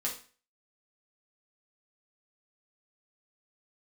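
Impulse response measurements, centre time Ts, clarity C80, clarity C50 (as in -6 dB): 22 ms, 13.5 dB, 7.5 dB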